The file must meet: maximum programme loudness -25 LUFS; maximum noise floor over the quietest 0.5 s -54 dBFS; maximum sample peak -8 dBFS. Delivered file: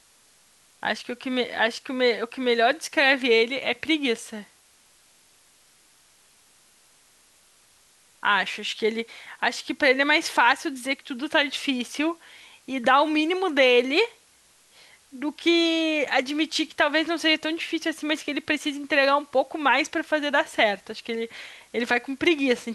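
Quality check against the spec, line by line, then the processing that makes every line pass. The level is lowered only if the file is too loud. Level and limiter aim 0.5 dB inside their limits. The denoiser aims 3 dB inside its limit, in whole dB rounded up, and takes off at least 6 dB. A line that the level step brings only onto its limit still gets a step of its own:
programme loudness -23.5 LUFS: fail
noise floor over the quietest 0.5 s -59 dBFS: OK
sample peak -5.5 dBFS: fail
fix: gain -2 dB; limiter -8.5 dBFS

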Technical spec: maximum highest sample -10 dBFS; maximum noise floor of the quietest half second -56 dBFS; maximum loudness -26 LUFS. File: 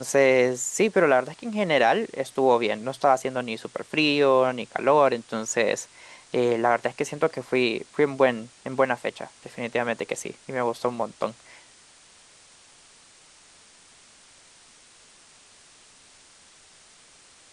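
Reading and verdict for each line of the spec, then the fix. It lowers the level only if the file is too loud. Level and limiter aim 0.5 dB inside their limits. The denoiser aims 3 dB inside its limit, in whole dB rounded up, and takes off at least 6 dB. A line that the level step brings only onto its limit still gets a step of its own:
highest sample -6.0 dBFS: fail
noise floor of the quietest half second -54 dBFS: fail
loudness -24.0 LUFS: fail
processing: gain -2.5 dB; limiter -10.5 dBFS

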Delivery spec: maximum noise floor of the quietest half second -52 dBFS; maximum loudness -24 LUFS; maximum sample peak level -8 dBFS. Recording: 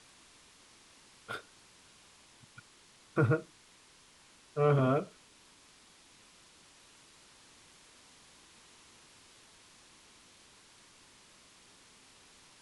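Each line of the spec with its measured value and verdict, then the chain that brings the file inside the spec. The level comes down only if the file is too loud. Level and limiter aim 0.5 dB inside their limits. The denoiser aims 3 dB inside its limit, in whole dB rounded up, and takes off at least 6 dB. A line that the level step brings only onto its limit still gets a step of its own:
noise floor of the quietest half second -61 dBFS: OK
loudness -32.0 LUFS: OK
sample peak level -16.0 dBFS: OK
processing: none

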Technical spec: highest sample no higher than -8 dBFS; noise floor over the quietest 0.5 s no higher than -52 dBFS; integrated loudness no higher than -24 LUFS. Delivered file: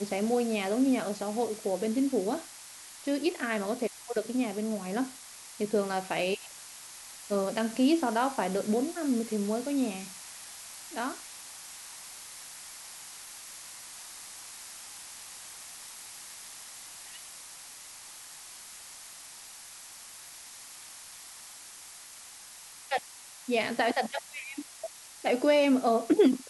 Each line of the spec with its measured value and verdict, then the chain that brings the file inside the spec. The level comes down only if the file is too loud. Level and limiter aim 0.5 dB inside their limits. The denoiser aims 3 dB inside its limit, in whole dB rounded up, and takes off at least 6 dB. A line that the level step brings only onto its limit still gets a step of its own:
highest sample -13.0 dBFS: OK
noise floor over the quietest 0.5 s -49 dBFS: fail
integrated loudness -31.5 LUFS: OK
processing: denoiser 6 dB, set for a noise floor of -49 dBFS

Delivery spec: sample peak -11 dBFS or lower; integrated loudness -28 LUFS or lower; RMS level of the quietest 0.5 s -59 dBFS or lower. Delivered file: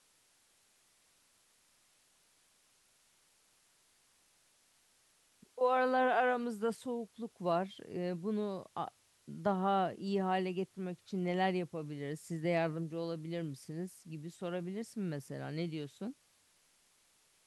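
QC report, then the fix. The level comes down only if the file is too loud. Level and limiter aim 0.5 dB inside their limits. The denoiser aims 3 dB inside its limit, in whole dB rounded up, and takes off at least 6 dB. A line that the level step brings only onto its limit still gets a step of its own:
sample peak -20.0 dBFS: OK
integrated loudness -36.5 LUFS: OK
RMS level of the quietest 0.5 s -71 dBFS: OK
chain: none

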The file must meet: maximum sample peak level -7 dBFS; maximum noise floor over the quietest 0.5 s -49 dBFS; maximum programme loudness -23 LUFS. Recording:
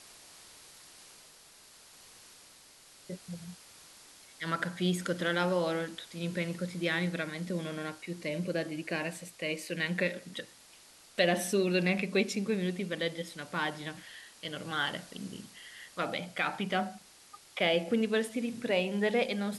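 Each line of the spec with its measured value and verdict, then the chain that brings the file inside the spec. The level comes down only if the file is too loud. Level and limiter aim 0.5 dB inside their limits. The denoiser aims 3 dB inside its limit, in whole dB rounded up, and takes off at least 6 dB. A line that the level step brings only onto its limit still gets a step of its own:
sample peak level -14.0 dBFS: OK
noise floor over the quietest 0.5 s -57 dBFS: OK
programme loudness -33.0 LUFS: OK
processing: none

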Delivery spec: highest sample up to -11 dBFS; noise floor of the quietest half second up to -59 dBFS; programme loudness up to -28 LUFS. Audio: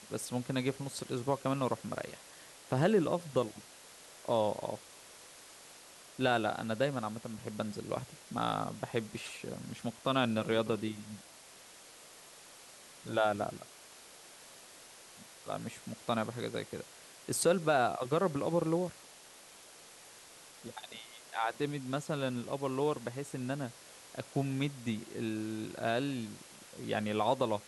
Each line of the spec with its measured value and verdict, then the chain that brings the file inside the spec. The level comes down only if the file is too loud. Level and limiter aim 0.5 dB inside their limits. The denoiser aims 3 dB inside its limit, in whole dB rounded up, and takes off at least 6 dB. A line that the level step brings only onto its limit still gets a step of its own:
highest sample -16.5 dBFS: OK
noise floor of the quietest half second -55 dBFS: fail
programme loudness -35.0 LUFS: OK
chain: denoiser 7 dB, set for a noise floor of -55 dBFS

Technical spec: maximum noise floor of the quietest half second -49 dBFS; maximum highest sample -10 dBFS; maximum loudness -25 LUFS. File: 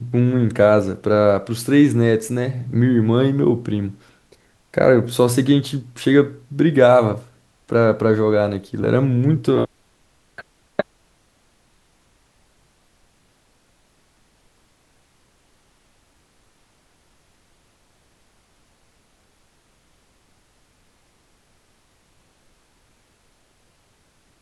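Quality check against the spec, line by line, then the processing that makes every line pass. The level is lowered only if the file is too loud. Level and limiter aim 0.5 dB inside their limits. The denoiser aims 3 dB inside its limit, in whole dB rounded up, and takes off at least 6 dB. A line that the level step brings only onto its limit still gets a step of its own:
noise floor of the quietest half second -60 dBFS: OK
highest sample -2.0 dBFS: fail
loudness -18.0 LUFS: fail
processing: gain -7.5 dB; limiter -10.5 dBFS

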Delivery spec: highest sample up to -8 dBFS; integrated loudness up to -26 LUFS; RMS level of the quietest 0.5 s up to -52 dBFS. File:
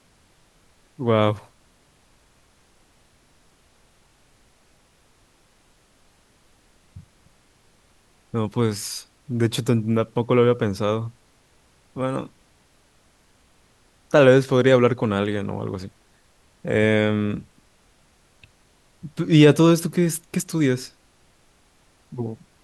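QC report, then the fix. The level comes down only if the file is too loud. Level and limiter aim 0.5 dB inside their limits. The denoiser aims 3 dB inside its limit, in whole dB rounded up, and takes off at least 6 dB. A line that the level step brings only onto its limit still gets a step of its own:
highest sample -3.0 dBFS: fail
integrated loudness -21.0 LUFS: fail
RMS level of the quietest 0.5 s -59 dBFS: OK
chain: gain -5.5 dB

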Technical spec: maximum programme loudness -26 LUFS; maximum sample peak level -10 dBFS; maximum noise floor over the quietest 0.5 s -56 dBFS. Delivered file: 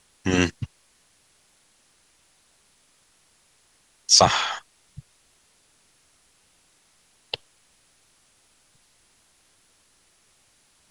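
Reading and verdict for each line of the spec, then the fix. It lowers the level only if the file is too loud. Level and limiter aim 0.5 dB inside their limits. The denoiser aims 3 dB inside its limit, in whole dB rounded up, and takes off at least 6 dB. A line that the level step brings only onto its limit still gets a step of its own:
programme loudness -21.0 LUFS: fail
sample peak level -2.5 dBFS: fail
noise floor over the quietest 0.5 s -62 dBFS: OK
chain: gain -5.5 dB; limiter -10.5 dBFS

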